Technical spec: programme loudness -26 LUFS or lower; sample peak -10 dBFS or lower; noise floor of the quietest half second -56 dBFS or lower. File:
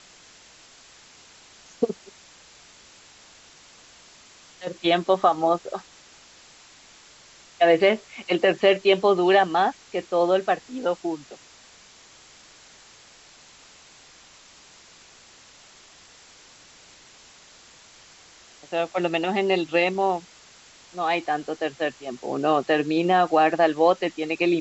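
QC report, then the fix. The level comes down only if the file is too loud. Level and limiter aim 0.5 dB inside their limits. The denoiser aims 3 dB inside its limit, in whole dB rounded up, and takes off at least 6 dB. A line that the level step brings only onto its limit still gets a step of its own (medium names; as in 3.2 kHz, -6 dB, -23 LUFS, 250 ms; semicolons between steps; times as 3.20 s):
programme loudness -22.5 LUFS: fail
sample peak -6.5 dBFS: fail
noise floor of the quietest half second -51 dBFS: fail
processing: noise reduction 6 dB, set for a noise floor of -51 dBFS; trim -4 dB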